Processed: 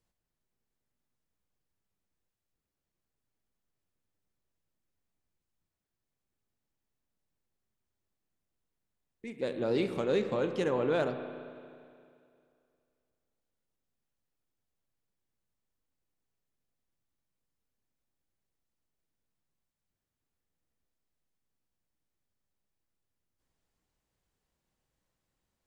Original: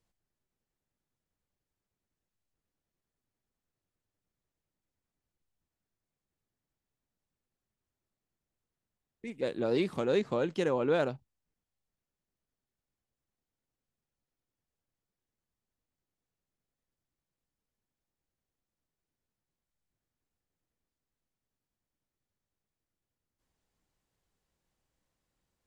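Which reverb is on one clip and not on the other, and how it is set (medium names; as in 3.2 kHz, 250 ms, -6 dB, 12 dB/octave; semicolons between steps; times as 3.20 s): spring tank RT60 2.4 s, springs 32/44 ms, chirp 35 ms, DRR 7.5 dB; trim -1 dB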